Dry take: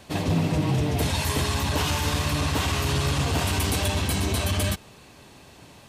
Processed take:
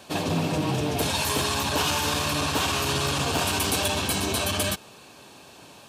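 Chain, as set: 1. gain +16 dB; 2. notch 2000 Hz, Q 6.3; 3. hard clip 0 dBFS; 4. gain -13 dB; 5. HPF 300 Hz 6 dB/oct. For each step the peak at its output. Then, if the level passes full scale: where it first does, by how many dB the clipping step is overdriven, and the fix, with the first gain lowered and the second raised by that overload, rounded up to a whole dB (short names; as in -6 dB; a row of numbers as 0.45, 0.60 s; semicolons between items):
+3.0, +3.5, 0.0, -13.0, -11.0 dBFS; step 1, 3.5 dB; step 1 +12 dB, step 4 -9 dB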